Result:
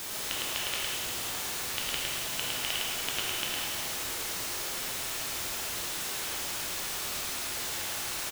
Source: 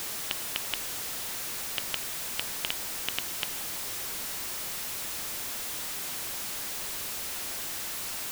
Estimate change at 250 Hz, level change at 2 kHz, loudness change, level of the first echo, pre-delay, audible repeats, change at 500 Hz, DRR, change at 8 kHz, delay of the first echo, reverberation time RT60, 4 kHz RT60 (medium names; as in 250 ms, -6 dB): +2.5 dB, +3.0 dB, +0.5 dB, -3.5 dB, 6 ms, 1, +3.5 dB, -6.0 dB, +1.0 dB, 108 ms, 2.1 s, 2.0 s